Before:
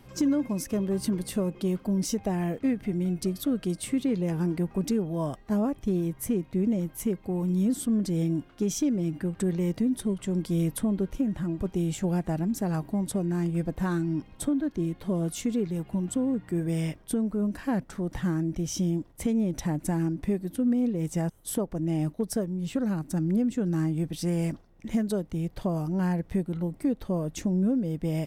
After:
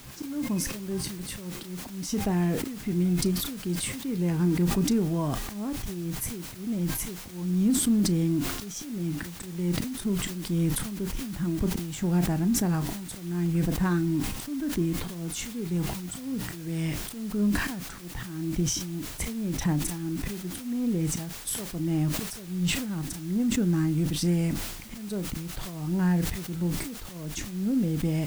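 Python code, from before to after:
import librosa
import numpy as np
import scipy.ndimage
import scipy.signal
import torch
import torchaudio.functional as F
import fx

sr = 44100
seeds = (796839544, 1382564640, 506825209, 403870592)

p1 = fx.recorder_agc(x, sr, target_db=-21.0, rise_db_per_s=21.0, max_gain_db=30)
p2 = np.clip(10.0 ** (22.0 / 20.0) * p1, -1.0, 1.0) / 10.0 ** (22.0 / 20.0)
p3 = p1 + F.gain(torch.from_numpy(p2), -8.5).numpy()
p4 = fx.auto_swell(p3, sr, attack_ms=370.0)
p5 = fx.peak_eq(p4, sr, hz=570.0, db=-7.5, octaves=0.75)
p6 = fx.doubler(p5, sr, ms=34.0, db=-14)
p7 = fx.quant_dither(p6, sr, seeds[0], bits=8, dither='triangular')
p8 = fx.high_shelf(p7, sr, hz=7800.0, db=-3.5)
y = fx.sustainer(p8, sr, db_per_s=49.0)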